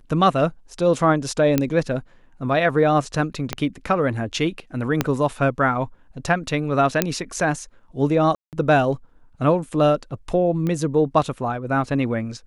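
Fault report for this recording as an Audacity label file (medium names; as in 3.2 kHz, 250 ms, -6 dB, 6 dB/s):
1.580000	1.580000	pop -5 dBFS
3.530000	3.530000	pop -8 dBFS
5.010000	5.010000	pop -4 dBFS
7.020000	7.020000	pop -2 dBFS
8.350000	8.530000	dropout 178 ms
10.670000	10.670000	pop -15 dBFS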